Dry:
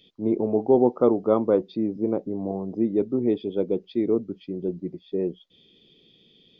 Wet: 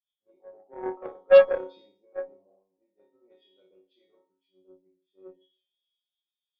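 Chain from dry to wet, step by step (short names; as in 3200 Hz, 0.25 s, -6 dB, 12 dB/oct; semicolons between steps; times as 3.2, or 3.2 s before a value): resonant low shelf 360 Hz -12 dB, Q 1.5; resonator bank F#3 fifth, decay 0.56 s; flutter echo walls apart 5 m, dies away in 0.53 s; added harmonics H 6 -34 dB, 7 -21 dB, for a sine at -18.5 dBFS; three-band expander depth 100%; gain +5 dB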